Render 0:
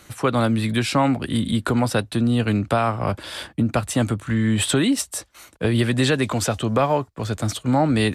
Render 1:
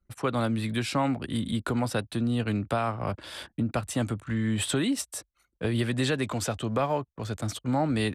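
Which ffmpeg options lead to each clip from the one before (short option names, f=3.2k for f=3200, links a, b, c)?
-af "anlmdn=0.631,volume=-7.5dB"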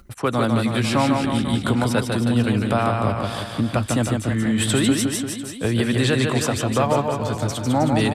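-af "aecho=1:1:150|315|496.5|696.2|915.8:0.631|0.398|0.251|0.158|0.1,acompressor=mode=upward:threshold=-43dB:ratio=2.5,volume=6dB"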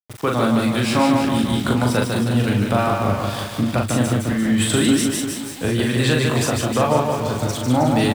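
-filter_complex "[0:a]aeval=exprs='val(0)*gte(abs(val(0)),0.0237)':c=same,asplit=2[a][b];[b]adelay=40,volume=-3dB[c];[a][c]amix=inputs=2:normalize=0"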